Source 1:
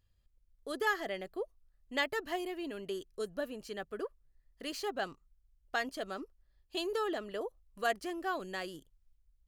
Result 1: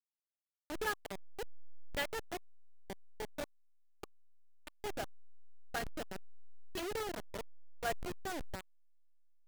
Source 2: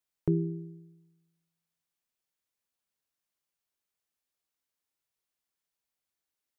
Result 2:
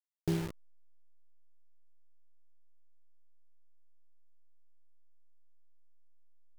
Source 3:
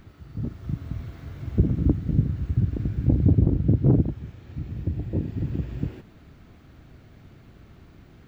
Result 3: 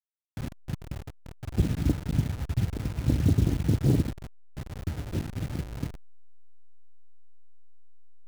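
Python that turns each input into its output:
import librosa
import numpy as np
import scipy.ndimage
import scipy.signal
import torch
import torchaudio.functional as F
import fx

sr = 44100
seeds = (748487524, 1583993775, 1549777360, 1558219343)

y = fx.delta_hold(x, sr, step_db=-29.0)
y = fx.notch(y, sr, hz=1100.0, q=10.0)
y = y * 10.0 ** (-4.0 / 20.0)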